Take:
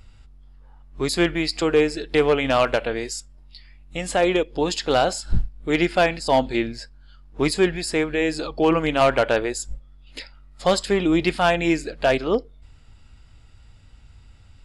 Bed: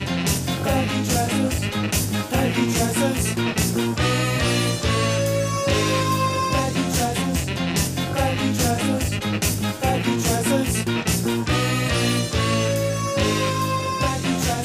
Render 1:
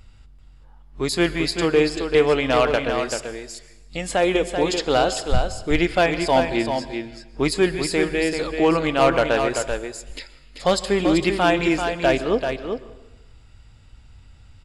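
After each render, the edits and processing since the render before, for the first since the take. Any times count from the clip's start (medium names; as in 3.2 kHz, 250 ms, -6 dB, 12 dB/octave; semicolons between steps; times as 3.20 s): delay 387 ms -6.5 dB; plate-style reverb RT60 1 s, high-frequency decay 0.9×, pre-delay 105 ms, DRR 15.5 dB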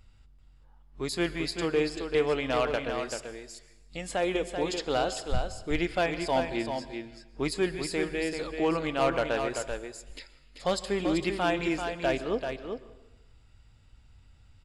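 trim -9 dB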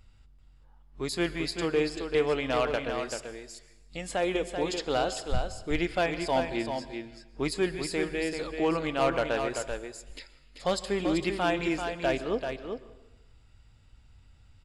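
no audible change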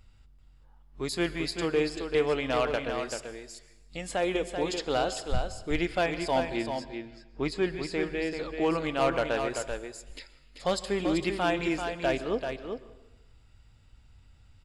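6.84–8.61 s: distance through air 86 m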